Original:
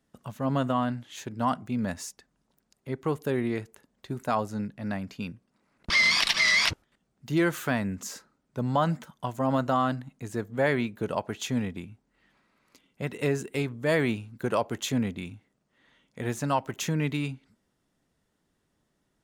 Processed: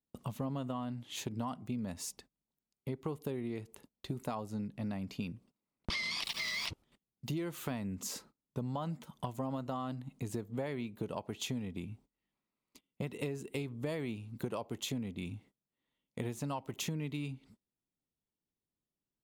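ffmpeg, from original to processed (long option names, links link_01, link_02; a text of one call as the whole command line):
ffmpeg -i in.wav -filter_complex "[0:a]asettb=1/sr,asplit=3[link_01][link_02][link_03];[link_01]atrim=end=6.244[link_04];[link_02]atrim=start=6.24:end=6.67,asetpts=PTS-STARTPTS,afade=type=in:duration=0.004:curve=qsin,afade=type=out:start_time=0.426:duration=0.004:curve=qsin,aeval=exprs='val(0)*gte(abs(val(0)),0.0211)':channel_layout=same[link_05];[link_03]atrim=start=6.666[link_06];[link_04][link_05]acrossfade=duration=0.004:curve1=hsin:curve2=qsin[link_07];[link_07][link_06]acrossfade=duration=0.004:curve1=qsin:curve2=hsin,equalizer=frequency=630:width_type=o:width=0.67:gain=-3,equalizer=frequency=1600:width_type=o:width=0.67:gain=-11,equalizer=frequency=6300:width_type=o:width=0.67:gain=-4,agate=range=-23dB:threshold=-59dB:ratio=16:detection=peak,acompressor=threshold=-38dB:ratio=10,volume=3.5dB" out.wav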